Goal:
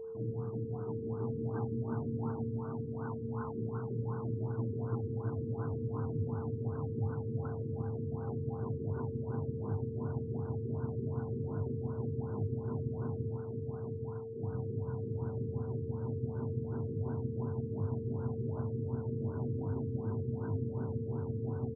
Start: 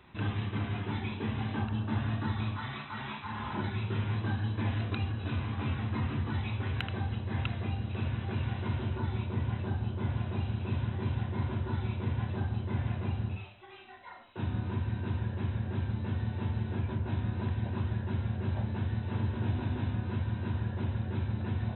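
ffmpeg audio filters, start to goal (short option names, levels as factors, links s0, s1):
-af "afreqshift=14,aeval=exprs='val(0)+0.0178*sin(2*PI*450*n/s)':c=same,aecho=1:1:825|1650|2475|3300|4125|4950:0.708|0.333|0.156|0.0735|0.0345|0.0162,afftfilt=real='re*lt(b*sr/1024,470*pow(1600/470,0.5+0.5*sin(2*PI*2.7*pts/sr)))':imag='im*lt(b*sr/1024,470*pow(1600/470,0.5+0.5*sin(2*PI*2.7*pts/sr)))':win_size=1024:overlap=0.75,volume=0.531"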